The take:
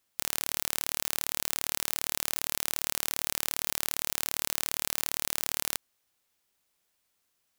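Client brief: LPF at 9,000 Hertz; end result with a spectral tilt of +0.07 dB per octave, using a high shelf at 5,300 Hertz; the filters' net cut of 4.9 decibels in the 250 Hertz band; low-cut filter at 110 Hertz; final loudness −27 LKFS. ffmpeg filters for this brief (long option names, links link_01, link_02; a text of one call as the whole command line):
ffmpeg -i in.wav -af "highpass=110,lowpass=9000,equalizer=frequency=250:width_type=o:gain=-6.5,highshelf=frequency=5300:gain=5,volume=5dB" out.wav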